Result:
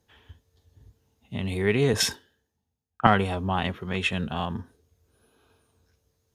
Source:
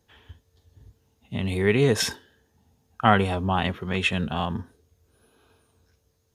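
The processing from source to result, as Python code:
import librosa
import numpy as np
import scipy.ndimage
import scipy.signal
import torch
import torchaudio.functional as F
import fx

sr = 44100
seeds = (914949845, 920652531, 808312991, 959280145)

y = fx.cheby_harmonics(x, sr, harmonics=(4,), levels_db=(-31,), full_scale_db=-1.5)
y = fx.band_widen(y, sr, depth_pct=70, at=(1.93, 3.07))
y = y * librosa.db_to_amplitude(-2.5)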